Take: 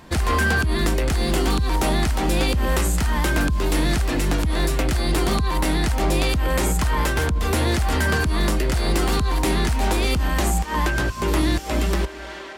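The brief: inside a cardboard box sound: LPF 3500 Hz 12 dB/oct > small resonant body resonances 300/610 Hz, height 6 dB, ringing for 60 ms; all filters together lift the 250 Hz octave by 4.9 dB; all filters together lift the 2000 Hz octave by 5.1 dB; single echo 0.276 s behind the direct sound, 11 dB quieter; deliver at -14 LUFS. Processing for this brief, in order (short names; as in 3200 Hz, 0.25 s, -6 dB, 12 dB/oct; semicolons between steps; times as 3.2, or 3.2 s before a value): LPF 3500 Hz 12 dB/oct; bell 250 Hz +6.5 dB; bell 2000 Hz +7 dB; echo 0.276 s -11 dB; small resonant body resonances 300/610 Hz, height 6 dB, ringing for 60 ms; gain +4 dB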